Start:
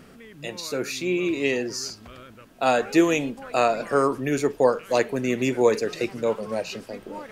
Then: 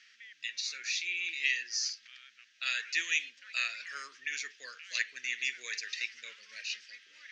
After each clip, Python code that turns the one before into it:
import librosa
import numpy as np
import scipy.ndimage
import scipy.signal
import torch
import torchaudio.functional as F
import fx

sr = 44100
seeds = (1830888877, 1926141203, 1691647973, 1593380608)

y = scipy.signal.sosfilt(scipy.signal.ellip(3, 1.0, 40, [1800.0, 6200.0], 'bandpass', fs=sr, output='sos'), x)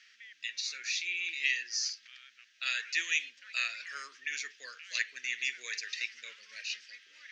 y = fx.low_shelf(x, sr, hz=110.0, db=-11.5)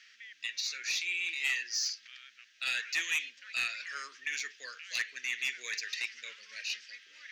y = 10.0 ** (-25.5 / 20.0) * np.tanh(x / 10.0 ** (-25.5 / 20.0))
y = y * librosa.db_to_amplitude(2.0)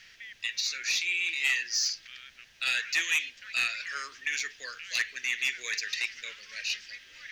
y = fx.dmg_noise_colour(x, sr, seeds[0], colour='pink', level_db=-74.0)
y = y * librosa.db_to_amplitude(4.5)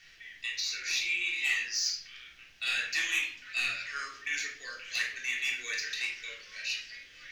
y = fx.room_shoebox(x, sr, seeds[1], volume_m3=720.0, walls='furnished', distance_m=3.5)
y = y * librosa.db_to_amplitude(-6.5)